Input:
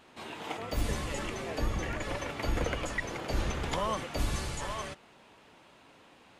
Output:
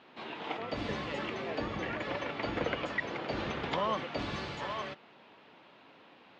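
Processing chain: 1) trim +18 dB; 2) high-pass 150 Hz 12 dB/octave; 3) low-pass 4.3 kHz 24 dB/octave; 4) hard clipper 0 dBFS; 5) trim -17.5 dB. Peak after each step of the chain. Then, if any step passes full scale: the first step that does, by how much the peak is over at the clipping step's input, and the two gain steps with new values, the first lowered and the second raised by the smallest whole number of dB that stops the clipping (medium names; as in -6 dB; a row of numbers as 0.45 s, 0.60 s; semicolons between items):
-2.0 dBFS, -1.0 dBFS, -2.0 dBFS, -2.0 dBFS, -19.5 dBFS; nothing clips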